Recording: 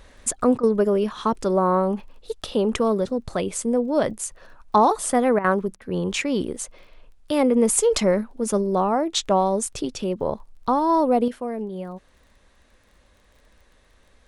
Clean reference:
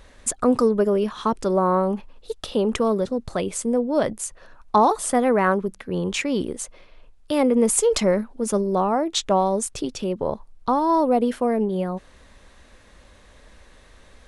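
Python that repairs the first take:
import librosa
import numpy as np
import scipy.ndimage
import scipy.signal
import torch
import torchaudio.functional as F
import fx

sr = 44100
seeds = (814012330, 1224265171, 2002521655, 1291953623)

y = fx.fix_declick_ar(x, sr, threshold=6.5)
y = fx.fix_interpolate(y, sr, at_s=(0.58, 5.39, 5.76), length_ms=52.0)
y = fx.gain(y, sr, db=fx.steps((0.0, 0.0), (11.28, 7.5)))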